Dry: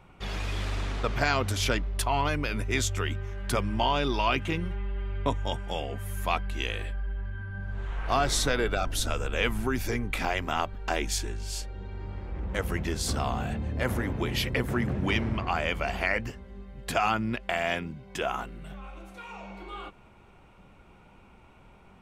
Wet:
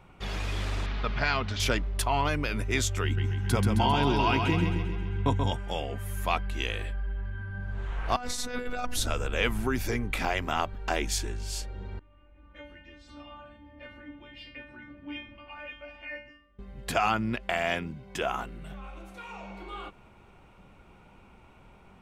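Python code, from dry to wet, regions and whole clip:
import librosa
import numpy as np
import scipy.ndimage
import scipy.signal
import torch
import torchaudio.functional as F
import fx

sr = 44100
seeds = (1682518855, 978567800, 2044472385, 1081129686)

y = fx.chain(x, sr, fx.lowpass(hz=4800.0, slope=24),
    fx.peak_eq(hz=430.0, db=-6.5, octaves=1.7),
    fx.comb(ms=4.8, depth=0.33), at=(0.86, 1.6))
y = fx.chain(y, sr, fx.low_shelf(hz=210.0, db=7.0),
    fx.notch_comb(f0_hz=600.0),
    fx.echo_feedback(ms=133, feedback_pct=54, wet_db=-5), at=(3.04, 5.51))
y = fx.chain(y, sr, fx.peak_eq(hz=3300.0, db=-6.5, octaves=0.22),
    fx.over_compress(threshold_db=-29.0, ratio=-0.5),
    fx.robotise(hz=246.0), at=(8.16, 8.97))
y = fx.chain(y, sr, fx.lowpass_res(hz=2700.0, q=2.0),
    fx.low_shelf(hz=200.0, db=6.0),
    fx.stiff_resonator(f0_hz=290.0, decay_s=0.51, stiffness=0.002), at=(11.99, 16.59))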